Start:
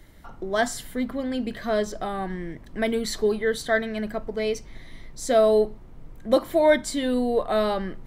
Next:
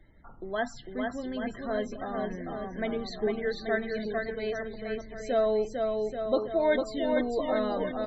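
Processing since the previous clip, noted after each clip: low-pass 5.4 kHz 12 dB/octave; bouncing-ball echo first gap 450 ms, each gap 0.85×, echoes 5; loudest bins only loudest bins 64; trim -7.5 dB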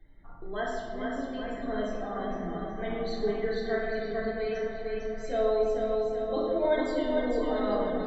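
reverberation RT60 1.7 s, pre-delay 3 ms, DRR -5 dB; trim -7 dB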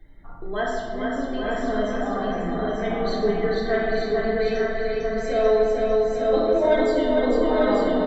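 saturation -16.5 dBFS, distortion -26 dB; delay 892 ms -3.5 dB; trim +7 dB

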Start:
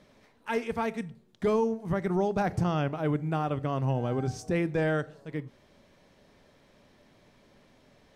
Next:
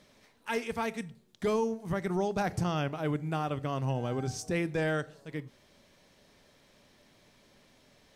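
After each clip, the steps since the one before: treble shelf 2.6 kHz +9.5 dB; trim -3.5 dB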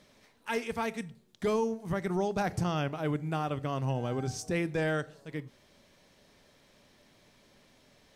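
no audible change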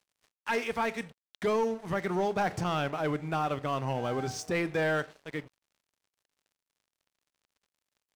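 in parallel at -8.5 dB: hard clipper -34 dBFS, distortion -7 dB; on the sum: overdrive pedal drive 12 dB, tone 3.2 kHz, clips at -19 dBFS; crossover distortion -48.5 dBFS

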